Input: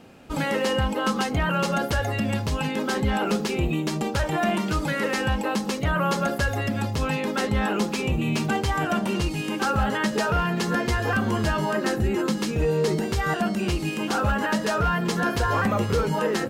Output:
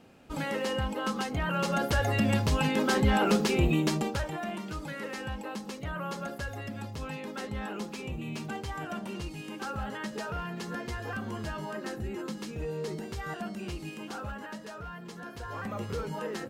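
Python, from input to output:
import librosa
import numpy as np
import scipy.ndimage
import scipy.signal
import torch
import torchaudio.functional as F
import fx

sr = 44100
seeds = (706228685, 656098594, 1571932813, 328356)

y = fx.gain(x, sr, db=fx.line((1.37, -7.5), (2.2, -0.5), (3.88, -0.5), (4.42, -12.5), (13.89, -12.5), (14.75, -19.0), (15.3, -19.0), (15.84, -11.5)))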